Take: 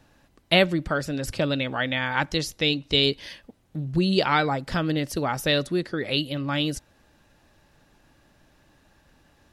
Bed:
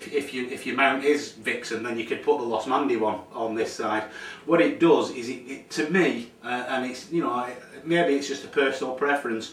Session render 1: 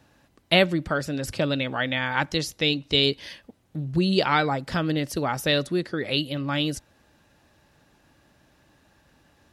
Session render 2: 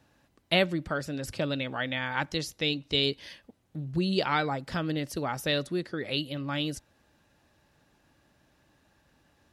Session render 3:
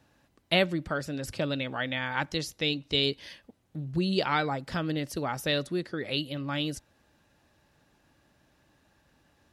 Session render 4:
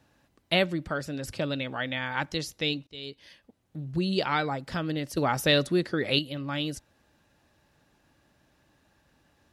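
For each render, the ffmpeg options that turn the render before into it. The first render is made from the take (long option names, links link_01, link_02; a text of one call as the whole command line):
ffmpeg -i in.wav -af "highpass=53" out.wav
ffmpeg -i in.wav -af "volume=-5.5dB" out.wav
ffmpeg -i in.wav -af anull out.wav
ffmpeg -i in.wav -filter_complex "[0:a]asettb=1/sr,asplit=3[link_01][link_02][link_03];[link_01]atrim=end=5.174[link_04];[link_02]atrim=start=5.17:end=6.19,asetpts=PTS-STARTPTS,afade=type=in:duration=0.004:curve=qsin,afade=type=out:start_time=1.016:duration=0.004:curve=qsin,acontrast=46[link_05];[link_03]atrim=start=6.186[link_06];[link_04][link_05]acrossfade=duration=0.004:curve1=hsin:curve2=qsin[link_07];[link_07][link_06]acrossfade=duration=0.004:curve1=qsin:curve2=hsin,asplit=2[link_08][link_09];[link_08]atrim=end=2.87,asetpts=PTS-STARTPTS,afade=type=out:start_time=2.866:duration=0.004:curve=hsin:silence=0.0707946[link_10];[link_09]atrim=start=2.87,asetpts=PTS-STARTPTS,afade=type=in:duration=1.03:silence=0.0707946[link_11];[link_10][link_11]concat=n=2:v=0:a=1" out.wav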